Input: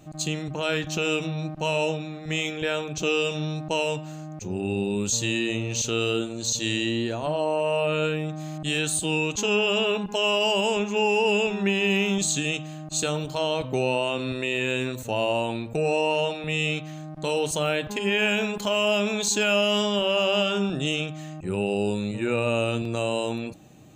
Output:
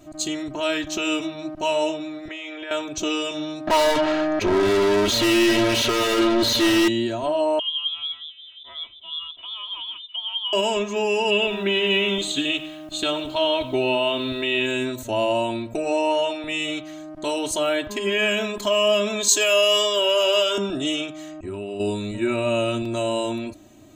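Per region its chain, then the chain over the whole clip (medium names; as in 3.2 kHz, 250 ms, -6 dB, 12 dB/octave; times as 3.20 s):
2.28–2.71 s: three-band isolator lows -23 dB, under 310 Hz, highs -16 dB, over 3.7 kHz + compression 4:1, threshold -32 dBFS
3.67–6.88 s: distance through air 340 m + overdrive pedal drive 36 dB, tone 5.6 kHz, clips at -15 dBFS
7.59–10.53 s: wah-wah 5.6 Hz 380–1100 Hz, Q 3.4 + frequency inversion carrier 3.8 kHz
11.30–14.66 s: resonant high shelf 4.4 kHz -7 dB, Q 3 + bit-crushed delay 99 ms, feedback 35%, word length 8-bit, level -15 dB
19.28–20.58 s: high-pass 320 Hz 24 dB/octave + treble shelf 5.2 kHz +10 dB
21.31–21.80 s: compression 3:1, threshold -29 dBFS + low-pass 8.3 kHz + peaking EQ 5.2 kHz -4 dB 1.5 oct
whole clip: band-stop 2.6 kHz, Q 26; comb 3.1 ms, depth 93%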